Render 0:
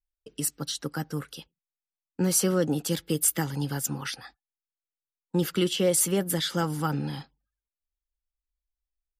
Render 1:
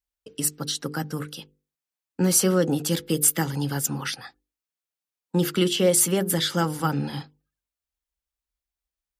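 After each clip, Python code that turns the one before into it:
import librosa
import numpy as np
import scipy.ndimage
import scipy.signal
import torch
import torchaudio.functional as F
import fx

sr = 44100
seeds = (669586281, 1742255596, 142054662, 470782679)

y = scipy.signal.sosfilt(scipy.signal.butter(2, 48.0, 'highpass', fs=sr, output='sos'), x)
y = fx.hum_notches(y, sr, base_hz=50, count=10)
y = y * librosa.db_to_amplitude(4.0)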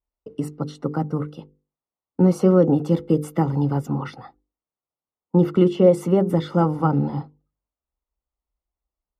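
y = scipy.signal.savgol_filter(x, 65, 4, mode='constant')
y = y * librosa.db_to_amplitude(6.0)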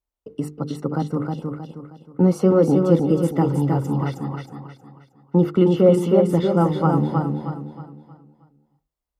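y = fx.echo_feedback(x, sr, ms=315, feedback_pct=37, wet_db=-4)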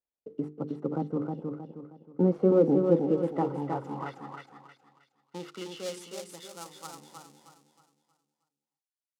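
y = fx.dead_time(x, sr, dead_ms=0.094)
y = fx.filter_sweep_bandpass(y, sr, from_hz=400.0, to_hz=8000.0, start_s=2.67, end_s=6.49, q=0.78)
y = y * librosa.db_to_amplitude(-4.5)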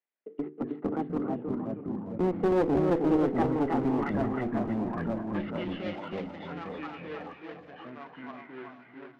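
y = fx.cabinet(x, sr, low_hz=310.0, low_slope=12, high_hz=2800.0, hz=(540.0, 1000.0, 2000.0), db=(-6, -4, 6))
y = fx.clip_asym(y, sr, top_db=-30.5, bottom_db=-20.0)
y = fx.echo_pitch(y, sr, ms=145, semitones=-3, count=3, db_per_echo=-3.0)
y = y * librosa.db_to_amplitude(3.5)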